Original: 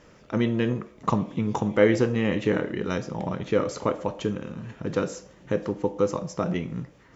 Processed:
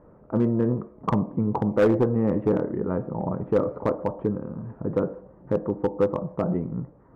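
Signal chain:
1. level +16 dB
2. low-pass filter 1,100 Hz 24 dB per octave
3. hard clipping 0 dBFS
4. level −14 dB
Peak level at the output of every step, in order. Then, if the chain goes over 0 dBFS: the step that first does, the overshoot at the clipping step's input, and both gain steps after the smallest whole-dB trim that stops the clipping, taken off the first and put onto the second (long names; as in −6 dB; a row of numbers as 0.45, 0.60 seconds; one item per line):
+9.5, +8.0, 0.0, −14.0 dBFS
step 1, 8.0 dB
step 1 +8 dB, step 4 −6 dB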